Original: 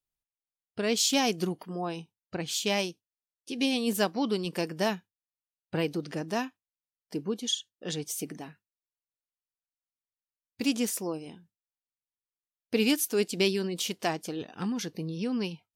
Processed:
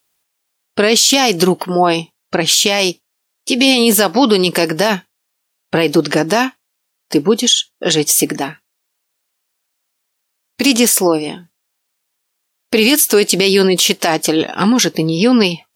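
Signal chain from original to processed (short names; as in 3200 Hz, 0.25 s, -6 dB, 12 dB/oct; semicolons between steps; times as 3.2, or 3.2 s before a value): HPF 390 Hz 6 dB/oct; maximiser +25.5 dB; gain -1 dB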